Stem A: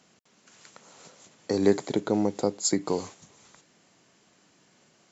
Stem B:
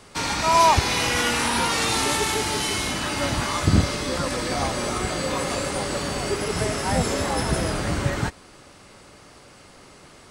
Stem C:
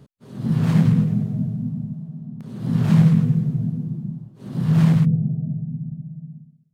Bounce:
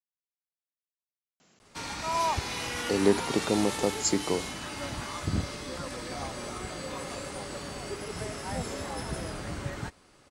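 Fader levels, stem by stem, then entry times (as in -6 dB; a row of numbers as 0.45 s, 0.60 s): -1.5 dB, -11.5 dB, mute; 1.40 s, 1.60 s, mute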